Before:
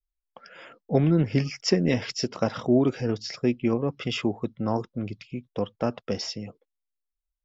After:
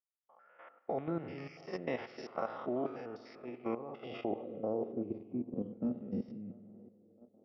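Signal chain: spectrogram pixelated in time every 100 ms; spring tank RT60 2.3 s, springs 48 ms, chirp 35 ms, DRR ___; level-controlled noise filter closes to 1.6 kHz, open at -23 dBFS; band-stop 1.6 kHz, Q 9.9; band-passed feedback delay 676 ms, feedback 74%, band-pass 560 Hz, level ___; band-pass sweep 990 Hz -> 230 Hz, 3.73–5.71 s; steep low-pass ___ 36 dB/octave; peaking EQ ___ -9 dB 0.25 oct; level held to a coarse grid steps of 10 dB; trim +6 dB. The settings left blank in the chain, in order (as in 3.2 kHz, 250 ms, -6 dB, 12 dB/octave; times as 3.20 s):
12.5 dB, -20 dB, 6 kHz, 990 Hz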